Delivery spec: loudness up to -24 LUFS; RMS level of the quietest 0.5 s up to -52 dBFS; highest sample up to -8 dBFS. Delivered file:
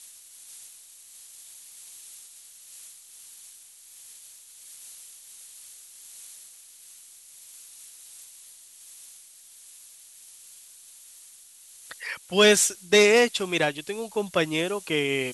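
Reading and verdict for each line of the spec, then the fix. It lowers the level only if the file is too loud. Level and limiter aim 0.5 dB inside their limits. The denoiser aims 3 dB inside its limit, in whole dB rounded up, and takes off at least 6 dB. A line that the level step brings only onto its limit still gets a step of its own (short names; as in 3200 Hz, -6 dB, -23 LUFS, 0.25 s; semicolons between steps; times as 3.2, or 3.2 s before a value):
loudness -22.5 LUFS: fail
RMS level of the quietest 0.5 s -51 dBFS: fail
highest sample -5.0 dBFS: fail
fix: gain -2 dB; limiter -8.5 dBFS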